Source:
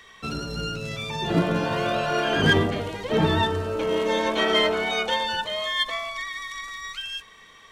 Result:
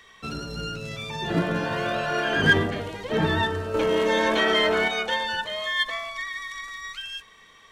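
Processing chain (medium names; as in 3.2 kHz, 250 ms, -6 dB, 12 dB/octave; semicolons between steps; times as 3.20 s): dynamic bell 1.7 kHz, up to +7 dB, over -44 dBFS, Q 4.3; 3.74–4.88 s: level flattener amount 70%; trim -2.5 dB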